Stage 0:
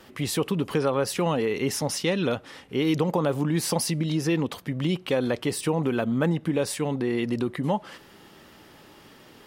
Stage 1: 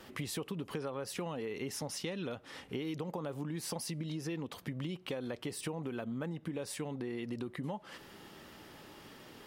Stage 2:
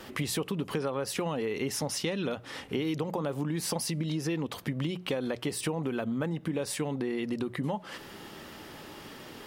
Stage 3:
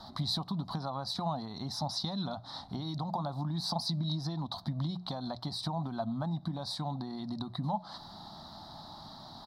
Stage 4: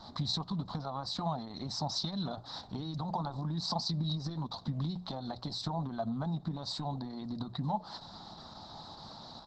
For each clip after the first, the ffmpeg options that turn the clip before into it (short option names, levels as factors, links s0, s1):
-af "acompressor=threshold=0.02:ratio=6,volume=0.75"
-af "bandreject=f=60:t=h:w=6,bandreject=f=120:t=h:w=6,bandreject=f=180:t=h:w=6,volume=2.37"
-af "firequalizer=gain_entry='entry(190,0);entry(460,-24);entry(670,5);entry(980,2);entry(1700,-15);entry(2700,-30);entry(3900,10);entry(6700,-15);entry(14000,-18)':delay=0.05:min_phase=1"
-ar 48000 -c:a libopus -b:a 10k